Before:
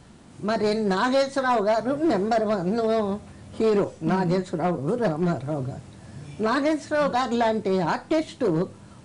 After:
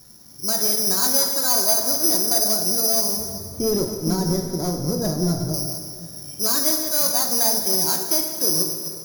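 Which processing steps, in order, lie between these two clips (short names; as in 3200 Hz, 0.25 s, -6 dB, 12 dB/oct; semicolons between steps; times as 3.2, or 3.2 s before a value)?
reverse delay 0.141 s, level -10 dB; careless resampling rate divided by 8×, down filtered, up zero stuff; 3.17–5.54 tilt -3.5 dB/oct; plate-style reverb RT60 2.3 s, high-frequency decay 0.85×, DRR 4.5 dB; gain -7.5 dB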